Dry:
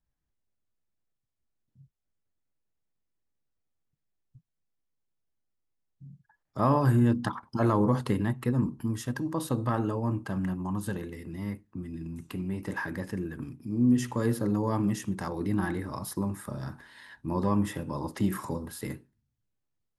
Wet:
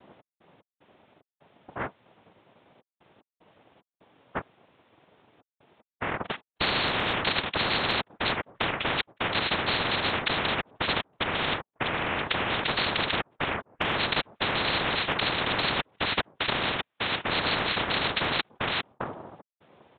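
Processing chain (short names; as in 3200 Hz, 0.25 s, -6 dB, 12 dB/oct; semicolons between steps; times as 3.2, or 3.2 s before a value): dynamic EQ 440 Hz, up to -5 dB, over -40 dBFS, Q 0.85; step gate "x.x.xx.xxxxxx" 75 bpm -60 dB; noise vocoder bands 2; air absorption 200 m; downsampling 8000 Hz; maximiser +19 dB; spectral compressor 10:1; gain -8.5 dB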